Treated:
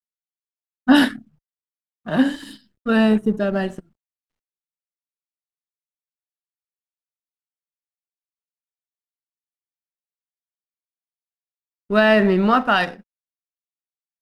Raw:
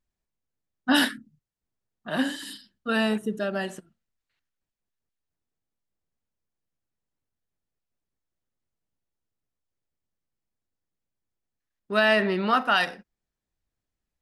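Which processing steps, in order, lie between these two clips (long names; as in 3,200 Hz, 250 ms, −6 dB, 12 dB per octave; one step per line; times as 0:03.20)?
mu-law and A-law mismatch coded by A
spectral tilt −2.5 dB per octave
level +5.5 dB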